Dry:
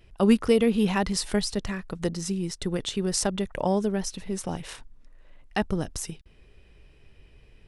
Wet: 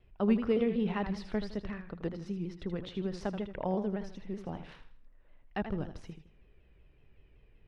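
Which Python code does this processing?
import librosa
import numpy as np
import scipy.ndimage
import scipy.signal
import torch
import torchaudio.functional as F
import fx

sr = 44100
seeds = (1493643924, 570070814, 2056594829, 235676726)

p1 = fx.air_absorb(x, sr, metres=320.0)
p2 = p1 + fx.echo_feedback(p1, sr, ms=80, feedback_pct=34, wet_db=-9.5, dry=0)
p3 = fx.vibrato_shape(p2, sr, shape='saw_down', rate_hz=5.3, depth_cents=100.0)
y = p3 * 10.0 ** (-7.5 / 20.0)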